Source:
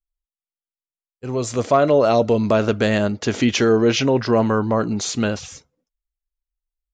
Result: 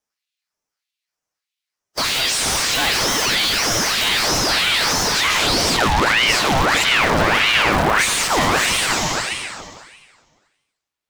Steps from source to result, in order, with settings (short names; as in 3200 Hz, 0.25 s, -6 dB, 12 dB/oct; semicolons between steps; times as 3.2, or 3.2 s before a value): block floating point 5-bit; time stretch by phase-locked vocoder 1.6×; gate with hold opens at -27 dBFS; high-pass sweep 3200 Hz -> 95 Hz, 5.12–6.28; compressor, threshold -22 dBFS, peak gain reduction 14 dB; plate-style reverb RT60 1.7 s, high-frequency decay 0.95×, pre-delay 80 ms, DRR 7 dB; overdrive pedal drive 40 dB, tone 2600 Hz, clips at -10.5 dBFS; soft clip -19 dBFS, distortion -15 dB; dispersion lows, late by 45 ms, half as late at 430 Hz; ring modulator with a swept carrier 1500 Hz, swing 75%, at 1.6 Hz; gain +8 dB